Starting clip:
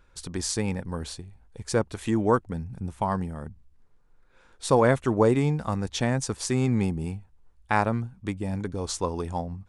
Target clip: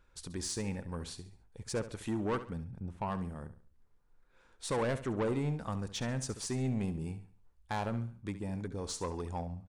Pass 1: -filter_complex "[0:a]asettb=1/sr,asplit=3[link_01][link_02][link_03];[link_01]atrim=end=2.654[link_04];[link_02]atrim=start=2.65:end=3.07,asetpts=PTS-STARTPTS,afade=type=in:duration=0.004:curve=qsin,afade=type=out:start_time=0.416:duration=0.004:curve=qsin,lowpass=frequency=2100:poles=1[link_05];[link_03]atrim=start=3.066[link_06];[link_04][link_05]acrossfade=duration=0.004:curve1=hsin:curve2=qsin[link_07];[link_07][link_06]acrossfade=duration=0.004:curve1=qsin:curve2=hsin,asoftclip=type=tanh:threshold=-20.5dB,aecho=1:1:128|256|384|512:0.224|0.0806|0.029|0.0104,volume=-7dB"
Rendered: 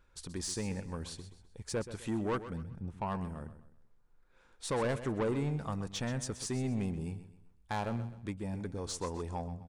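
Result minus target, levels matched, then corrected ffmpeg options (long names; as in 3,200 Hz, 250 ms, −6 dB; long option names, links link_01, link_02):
echo 59 ms late
-filter_complex "[0:a]asettb=1/sr,asplit=3[link_01][link_02][link_03];[link_01]atrim=end=2.654[link_04];[link_02]atrim=start=2.65:end=3.07,asetpts=PTS-STARTPTS,afade=type=in:duration=0.004:curve=qsin,afade=type=out:start_time=0.416:duration=0.004:curve=qsin,lowpass=frequency=2100:poles=1[link_05];[link_03]atrim=start=3.066[link_06];[link_04][link_05]acrossfade=duration=0.004:curve1=hsin:curve2=qsin[link_07];[link_07][link_06]acrossfade=duration=0.004:curve1=qsin:curve2=hsin,asoftclip=type=tanh:threshold=-20.5dB,aecho=1:1:69|138|207|276:0.224|0.0806|0.029|0.0104,volume=-7dB"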